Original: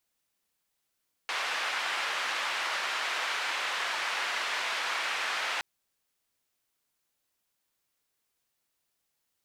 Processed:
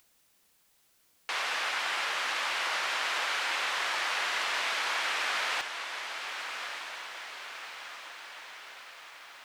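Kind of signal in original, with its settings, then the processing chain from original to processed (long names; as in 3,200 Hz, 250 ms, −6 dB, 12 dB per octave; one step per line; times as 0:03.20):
band-limited noise 900–2,400 Hz, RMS −32 dBFS 4.32 s
upward compression, threshold −55 dBFS
on a send: feedback delay with all-pass diffusion 1,226 ms, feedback 57%, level −7.5 dB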